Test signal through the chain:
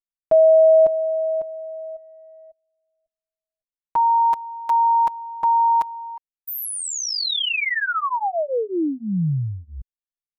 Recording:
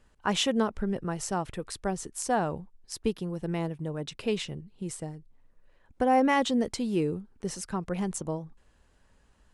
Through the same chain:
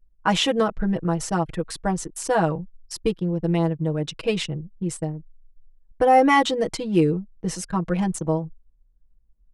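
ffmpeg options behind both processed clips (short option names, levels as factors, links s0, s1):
-filter_complex "[0:a]acrossover=split=4200[s0][s1];[s1]acompressor=threshold=0.0178:ratio=4:attack=1:release=60[s2];[s0][s2]amix=inputs=2:normalize=0,aecho=1:1:6.2:0.93,anlmdn=0.398,volume=1.68"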